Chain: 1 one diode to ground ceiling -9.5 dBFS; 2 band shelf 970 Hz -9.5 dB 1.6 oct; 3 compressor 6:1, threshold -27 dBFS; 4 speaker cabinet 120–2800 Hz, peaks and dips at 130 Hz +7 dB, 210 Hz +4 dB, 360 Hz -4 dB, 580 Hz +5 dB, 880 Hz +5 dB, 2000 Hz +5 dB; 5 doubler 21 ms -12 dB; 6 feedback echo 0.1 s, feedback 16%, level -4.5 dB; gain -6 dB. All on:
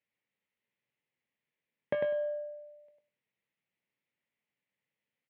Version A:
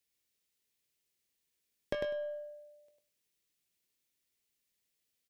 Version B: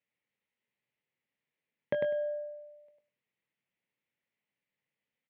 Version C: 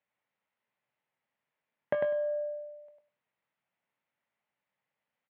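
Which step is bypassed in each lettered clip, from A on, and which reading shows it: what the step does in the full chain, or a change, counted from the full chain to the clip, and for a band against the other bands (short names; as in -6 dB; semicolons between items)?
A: 4, crest factor change +2.5 dB; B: 1, 1 kHz band -4.0 dB; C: 2, 1 kHz band +4.5 dB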